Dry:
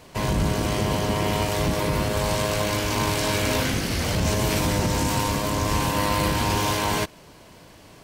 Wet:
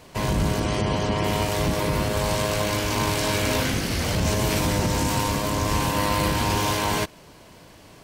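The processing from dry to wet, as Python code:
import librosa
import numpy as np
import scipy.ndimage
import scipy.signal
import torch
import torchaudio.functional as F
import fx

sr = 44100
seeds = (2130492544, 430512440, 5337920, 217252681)

y = fx.spec_gate(x, sr, threshold_db=-30, keep='strong', at=(0.59, 1.23), fade=0.02)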